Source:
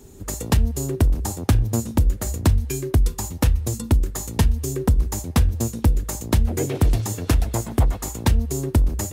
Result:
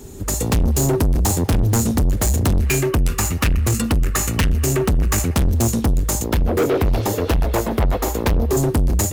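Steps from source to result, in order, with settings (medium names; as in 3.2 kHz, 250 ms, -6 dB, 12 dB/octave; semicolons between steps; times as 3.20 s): 2.60–5.35 s: time-frequency box 1.1–3 kHz +10 dB; 6.24–8.57 s: graphic EQ 125/500/8000 Hz -10/+8/-11 dB; level rider gain up to 8 dB; saturation -22 dBFS, distortion -4 dB; trim +8 dB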